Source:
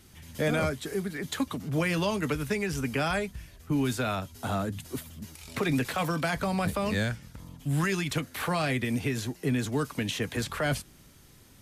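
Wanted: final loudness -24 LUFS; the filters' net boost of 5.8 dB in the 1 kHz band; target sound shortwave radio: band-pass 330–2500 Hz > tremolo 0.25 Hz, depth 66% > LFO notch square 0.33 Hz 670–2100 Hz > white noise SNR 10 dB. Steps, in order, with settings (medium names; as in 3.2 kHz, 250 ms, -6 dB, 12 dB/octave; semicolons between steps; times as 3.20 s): band-pass 330–2500 Hz; peaking EQ 1 kHz +8 dB; tremolo 0.25 Hz, depth 66%; LFO notch square 0.33 Hz 670–2100 Hz; white noise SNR 10 dB; trim +12.5 dB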